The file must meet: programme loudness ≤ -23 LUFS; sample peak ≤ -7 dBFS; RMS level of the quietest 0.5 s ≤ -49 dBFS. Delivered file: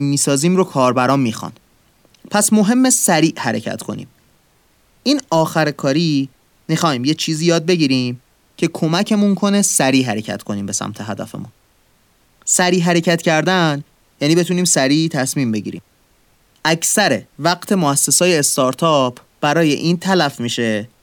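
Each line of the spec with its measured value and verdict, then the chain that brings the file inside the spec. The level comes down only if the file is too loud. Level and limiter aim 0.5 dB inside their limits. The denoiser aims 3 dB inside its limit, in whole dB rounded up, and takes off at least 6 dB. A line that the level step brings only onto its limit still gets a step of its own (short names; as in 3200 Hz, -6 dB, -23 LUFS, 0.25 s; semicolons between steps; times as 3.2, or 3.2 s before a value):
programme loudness -16.0 LUFS: fail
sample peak -2.5 dBFS: fail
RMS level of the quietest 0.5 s -56 dBFS: OK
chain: gain -7.5 dB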